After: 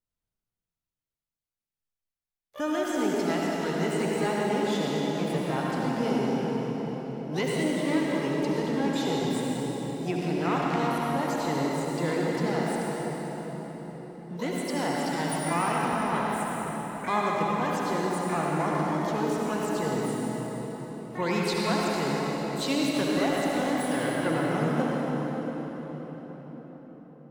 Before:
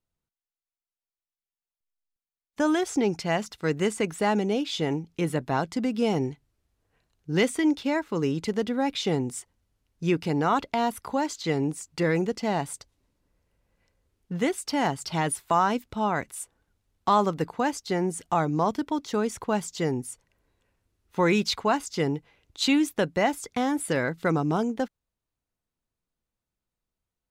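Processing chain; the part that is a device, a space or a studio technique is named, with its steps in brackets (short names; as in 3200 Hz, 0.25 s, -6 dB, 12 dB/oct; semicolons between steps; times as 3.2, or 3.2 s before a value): shimmer-style reverb (harmoniser +12 st -10 dB; reverb RT60 5.4 s, pre-delay 62 ms, DRR -4.5 dB); gain -7.5 dB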